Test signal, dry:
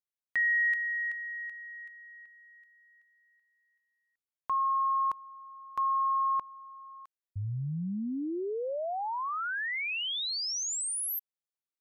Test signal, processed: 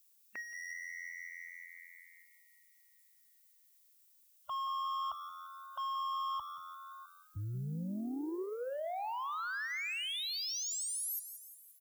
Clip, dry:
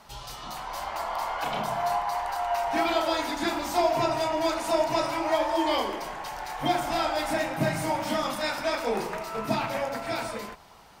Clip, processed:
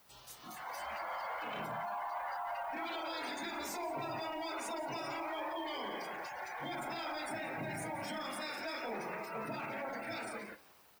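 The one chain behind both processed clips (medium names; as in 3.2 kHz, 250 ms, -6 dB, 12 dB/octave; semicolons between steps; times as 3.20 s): spectral contrast reduction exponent 0.41; high-pass 50 Hz 12 dB/octave; spectral gate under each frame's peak -10 dB strong; peak limiter -26.5 dBFS; saturation -34 dBFS; added noise violet -55 dBFS; on a send: frequency-shifting echo 175 ms, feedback 53%, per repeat +86 Hz, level -11 dB; on the sum: spectral noise reduction 11 dB; trim -1.5 dB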